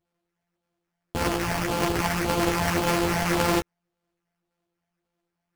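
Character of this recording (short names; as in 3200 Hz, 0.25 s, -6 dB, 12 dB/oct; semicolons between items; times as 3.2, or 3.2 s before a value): a buzz of ramps at a fixed pitch in blocks of 256 samples; phasing stages 8, 1.8 Hz, lowest notch 350–4700 Hz; aliases and images of a low sample rate 3800 Hz, jitter 20%; a shimmering, thickened sound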